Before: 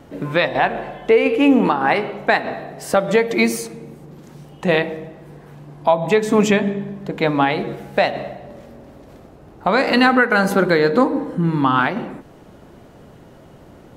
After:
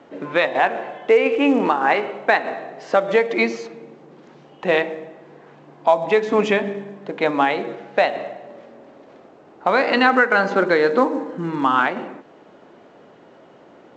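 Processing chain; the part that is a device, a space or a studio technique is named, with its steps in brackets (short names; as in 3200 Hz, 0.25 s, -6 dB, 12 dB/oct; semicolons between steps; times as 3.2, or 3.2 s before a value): telephone (BPF 310–3500 Hz; A-law 128 kbps 16000 Hz)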